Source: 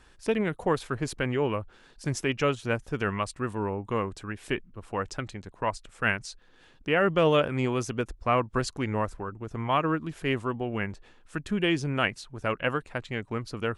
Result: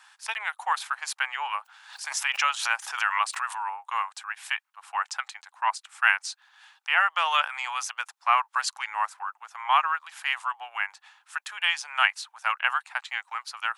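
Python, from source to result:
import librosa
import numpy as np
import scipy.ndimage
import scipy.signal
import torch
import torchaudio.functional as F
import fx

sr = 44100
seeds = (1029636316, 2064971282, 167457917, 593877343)

y = scipy.signal.sosfilt(scipy.signal.cheby1(5, 1.0, 810.0, 'highpass', fs=sr, output='sos'), x)
y = fx.pre_swell(y, sr, db_per_s=81.0, at=(1.59, 3.76))
y = y * 10.0 ** (6.5 / 20.0)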